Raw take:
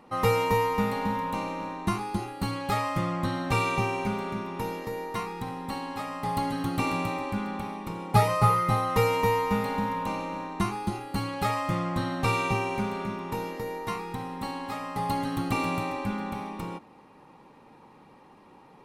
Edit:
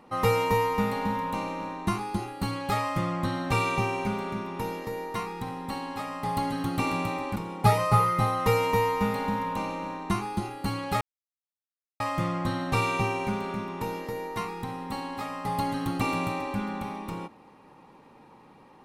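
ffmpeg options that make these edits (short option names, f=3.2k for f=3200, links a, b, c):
-filter_complex "[0:a]asplit=3[a][b][c];[a]atrim=end=7.362[d];[b]atrim=start=7.858:end=11.51,asetpts=PTS-STARTPTS,afade=t=out:st=3.648:d=0.004:c=hsin,apad=pad_dur=0.99[e];[c]atrim=start=11.51,asetpts=PTS-STARTPTS,afade=t=in:d=0.004:c=hsin[f];[e][f]concat=n=2:v=0:a=1[g];[d][g]acrossfade=d=0.004:c1=hsin:c2=hsin"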